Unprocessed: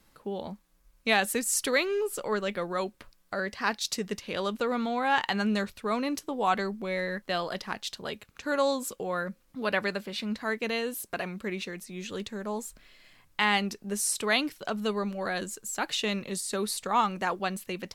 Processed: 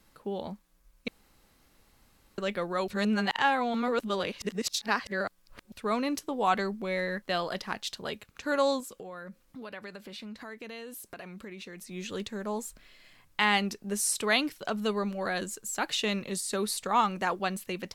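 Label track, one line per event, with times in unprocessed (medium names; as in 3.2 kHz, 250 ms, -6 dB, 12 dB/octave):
1.080000	2.380000	room tone
2.880000	5.720000	reverse
8.800000	11.910000	compression 4:1, threshold -41 dBFS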